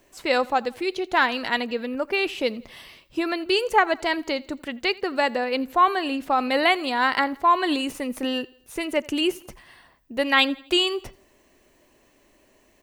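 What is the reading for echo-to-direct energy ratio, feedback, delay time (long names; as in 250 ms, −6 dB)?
−22.0 dB, 47%, 84 ms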